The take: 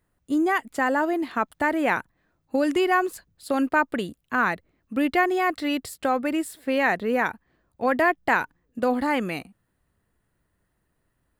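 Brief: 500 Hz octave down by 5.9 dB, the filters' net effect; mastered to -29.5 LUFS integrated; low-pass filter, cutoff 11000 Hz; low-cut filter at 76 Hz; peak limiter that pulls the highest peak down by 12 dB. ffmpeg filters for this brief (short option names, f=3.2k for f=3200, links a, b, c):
-af "highpass=76,lowpass=11k,equalizer=f=500:t=o:g=-8,volume=1dB,alimiter=limit=-19.5dB:level=0:latency=1"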